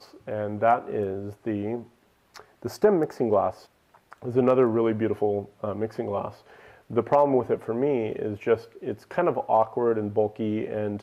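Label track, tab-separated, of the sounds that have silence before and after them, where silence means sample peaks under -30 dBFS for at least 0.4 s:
2.360000	3.500000	sound
4.130000	6.280000	sound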